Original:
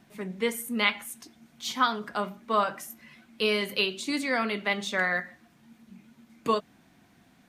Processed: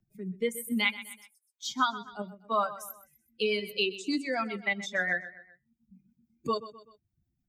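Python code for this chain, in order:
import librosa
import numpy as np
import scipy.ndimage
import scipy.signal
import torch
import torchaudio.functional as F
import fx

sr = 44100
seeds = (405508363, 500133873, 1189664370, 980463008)

p1 = fx.bin_expand(x, sr, power=2.0)
p2 = fx.highpass(p1, sr, hz=1100.0, slope=24, at=(0.96, 1.65))
p3 = fx.level_steps(p2, sr, step_db=17)
p4 = p2 + (p3 * 10.0 ** (-2.0 / 20.0))
p5 = fx.rotary_switch(p4, sr, hz=1.0, then_hz=7.0, switch_at_s=2.35)
p6 = p5 + fx.echo_feedback(p5, sr, ms=126, feedback_pct=36, wet_db=-16, dry=0)
y = fx.band_squash(p6, sr, depth_pct=40)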